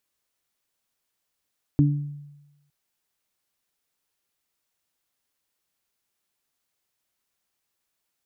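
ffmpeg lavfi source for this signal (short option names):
-f lavfi -i "aevalsrc='0.188*pow(10,-3*t/1.03)*sin(2*PI*145*t)+0.168*pow(10,-3*t/0.44)*sin(2*PI*290*t)':d=0.91:s=44100"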